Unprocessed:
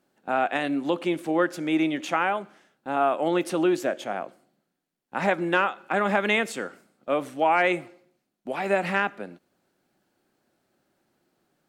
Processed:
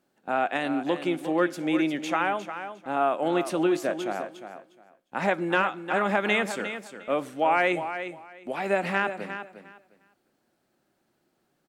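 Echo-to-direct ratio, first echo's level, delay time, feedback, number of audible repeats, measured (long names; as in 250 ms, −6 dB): −10.0 dB, −10.0 dB, 355 ms, 19%, 2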